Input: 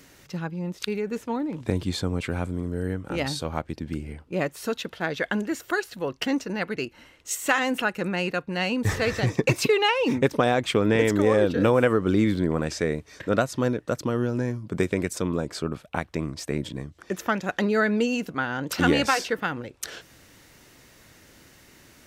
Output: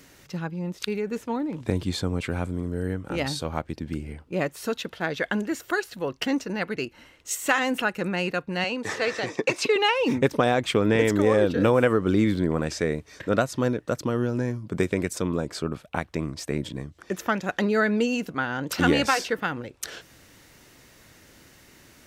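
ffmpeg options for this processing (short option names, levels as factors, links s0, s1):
-filter_complex "[0:a]asettb=1/sr,asplit=3[s0][s1][s2];[s0]atrim=end=8.644[s3];[s1]atrim=start=8.64:end=9.76,asetpts=PTS-STARTPTS,afade=t=in:d=0.004:c=qsin,afade=t=out:st=1.116:d=0.004:c=qsin,highpass=330,lowpass=7900[s4];[s2]atrim=start=9.756[s5];[s3][s4]acrossfade=d=0.004:c1=hsin:c2=qsin[s6];[s6][s5]acrossfade=d=0.004:c1=qsin:c2=hsin"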